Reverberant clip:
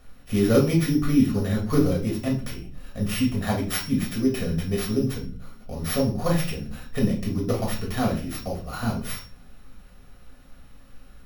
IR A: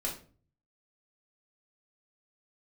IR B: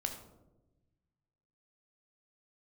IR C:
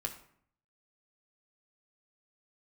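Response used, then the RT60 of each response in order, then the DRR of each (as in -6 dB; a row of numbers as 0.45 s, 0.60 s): A; 0.40 s, 1.0 s, 0.60 s; -2.5 dB, 4.0 dB, 2.5 dB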